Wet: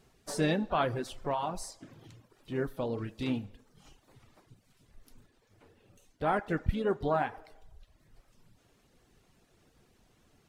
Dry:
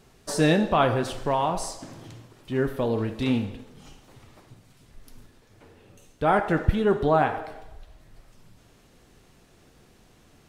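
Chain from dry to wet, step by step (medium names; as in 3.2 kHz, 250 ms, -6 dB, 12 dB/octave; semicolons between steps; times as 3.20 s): reverb removal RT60 0.73 s; harmony voices +4 st -15 dB; trim -7.5 dB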